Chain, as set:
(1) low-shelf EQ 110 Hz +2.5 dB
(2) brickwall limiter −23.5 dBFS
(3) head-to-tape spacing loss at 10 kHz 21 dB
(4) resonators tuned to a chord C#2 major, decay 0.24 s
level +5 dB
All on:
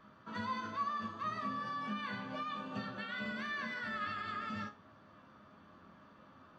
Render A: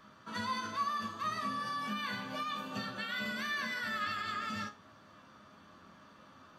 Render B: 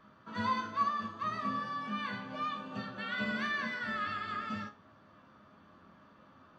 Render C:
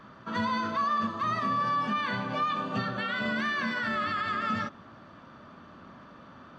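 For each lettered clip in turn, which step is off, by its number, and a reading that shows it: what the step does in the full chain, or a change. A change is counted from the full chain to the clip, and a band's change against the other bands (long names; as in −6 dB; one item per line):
3, 4 kHz band +6.5 dB
2, average gain reduction 2.0 dB
4, change in crest factor −3.0 dB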